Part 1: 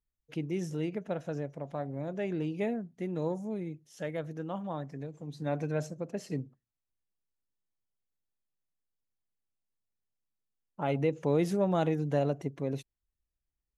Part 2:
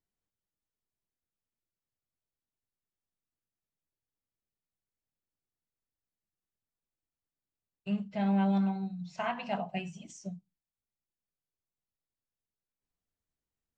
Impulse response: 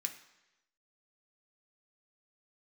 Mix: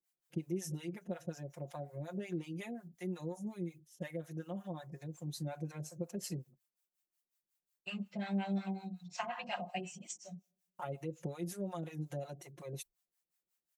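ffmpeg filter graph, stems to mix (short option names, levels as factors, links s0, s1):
-filter_complex "[0:a]agate=range=0.0224:threshold=0.00501:ratio=3:detection=peak,highshelf=f=6100:g=11,acompressor=threshold=0.0141:ratio=4,volume=0.944[s0];[1:a]highpass=f=470:p=1,acompressor=threshold=0.0141:ratio=2,volume=1.33,asplit=2[s1][s2];[s2]volume=0.158[s3];[2:a]atrim=start_sample=2205[s4];[s3][s4]afir=irnorm=-1:irlink=0[s5];[s0][s1][s5]amix=inputs=3:normalize=0,aecho=1:1:5.6:0.9,crystalizer=i=1:c=0,acrossover=split=620[s6][s7];[s6]aeval=exprs='val(0)*(1-1/2+1/2*cos(2*PI*5.5*n/s))':c=same[s8];[s7]aeval=exprs='val(0)*(1-1/2-1/2*cos(2*PI*5.5*n/s))':c=same[s9];[s8][s9]amix=inputs=2:normalize=0"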